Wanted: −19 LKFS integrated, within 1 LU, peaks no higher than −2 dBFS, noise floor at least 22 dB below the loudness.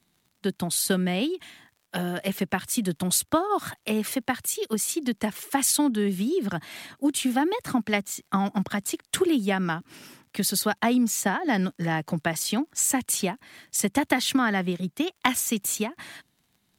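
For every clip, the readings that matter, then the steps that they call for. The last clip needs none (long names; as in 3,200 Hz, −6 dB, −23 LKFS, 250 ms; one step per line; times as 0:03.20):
crackle rate 38 per second; integrated loudness −26.0 LKFS; sample peak −5.5 dBFS; target loudness −19.0 LKFS
→ click removal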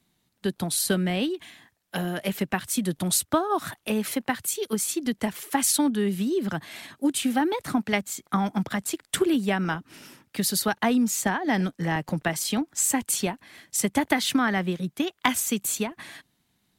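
crackle rate 0.30 per second; integrated loudness −26.0 LKFS; sample peak −5.5 dBFS; target loudness −19.0 LKFS
→ level +7 dB
brickwall limiter −2 dBFS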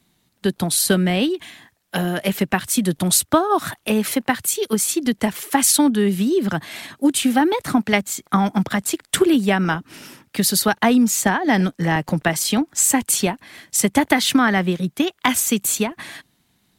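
integrated loudness −19.0 LKFS; sample peak −2.0 dBFS; background noise floor −65 dBFS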